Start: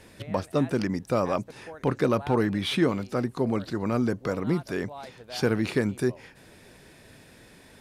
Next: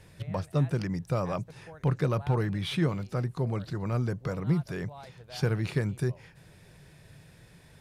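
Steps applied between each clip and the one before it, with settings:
low shelf with overshoot 190 Hz +6 dB, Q 3
level −5.5 dB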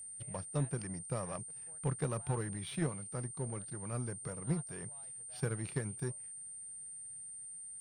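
power curve on the samples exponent 1.4
steady tone 8,900 Hz −39 dBFS
level −6 dB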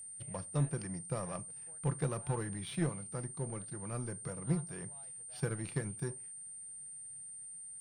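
convolution reverb RT60 0.25 s, pre-delay 6 ms, DRR 12 dB

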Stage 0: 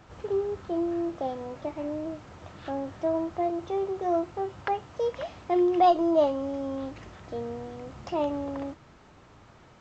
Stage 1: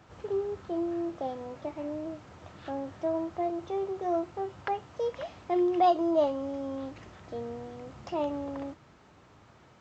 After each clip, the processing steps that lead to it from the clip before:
high-pass filter 61 Hz
level −3 dB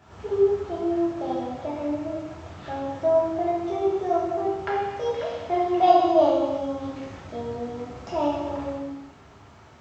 reverb whose tail is shaped and stops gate 440 ms falling, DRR −6.5 dB

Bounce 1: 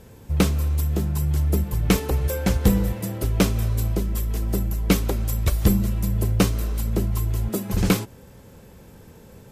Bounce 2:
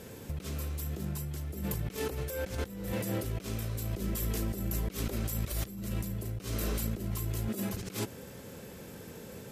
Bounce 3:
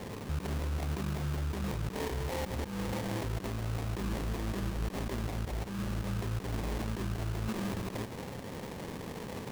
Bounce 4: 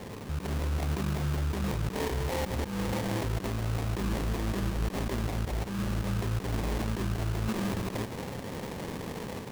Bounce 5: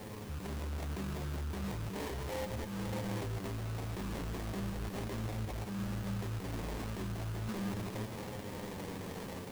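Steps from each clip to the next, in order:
high-pass filter 230 Hz 6 dB per octave; parametric band 920 Hz −5.5 dB 0.75 octaves; compressor whose output falls as the input rises −35 dBFS, ratio −1; level −1 dB
brickwall limiter −31.5 dBFS, peak gain reduction 10.5 dB; sample-rate reduction 1,400 Hz, jitter 20%; level +5 dB
automatic gain control gain up to 4 dB
background noise white −56 dBFS; flanger 0.37 Hz, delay 9.2 ms, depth 2 ms, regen +45%; in parallel at −6 dB: wave folding −38 dBFS; on the sum: level −4 dB

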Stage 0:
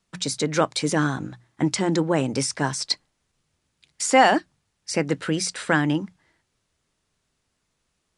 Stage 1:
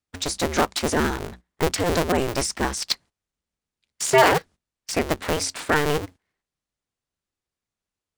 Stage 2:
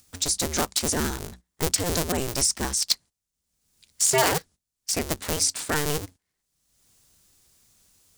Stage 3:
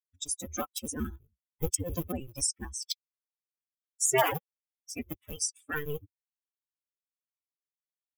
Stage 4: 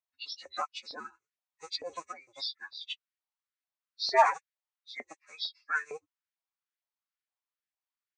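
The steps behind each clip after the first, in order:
sub-harmonics by changed cycles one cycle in 2, inverted; noise gate −42 dBFS, range −15 dB
bass and treble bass +5 dB, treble +14 dB; upward compression, threshold −33 dBFS; level −7 dB
spectral dynamics exaggerated over time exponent 3; parametric band 4,400 Hz −13 dB 0.37 octaves
hearing-aid frequency compression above 1,600 Hz 1.5 to 1; auto-filter high-pass saw up 2.2 Hz 650–1,900 Hz; Gaussian smoothing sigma 1.8 samples

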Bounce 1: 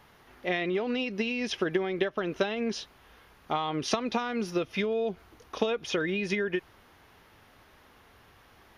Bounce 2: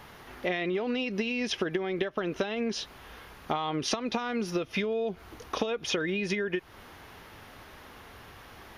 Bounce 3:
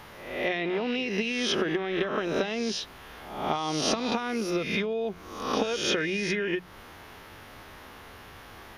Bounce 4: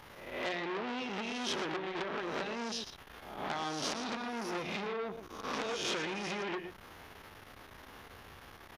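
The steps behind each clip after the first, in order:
downward compressor 4 to 1, threshold −37 dBFS, peak gain reduction 13.5 dB; level +8.5 dB
peak hold with a rise ahead of every peak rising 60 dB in 0.78 s; mains-hum notches 60/120/180 Hz
on a send: single-tap delay 118 ms −10.5 dB; on the sum: saturating transformer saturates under 3,500 Hz; level −4 dB

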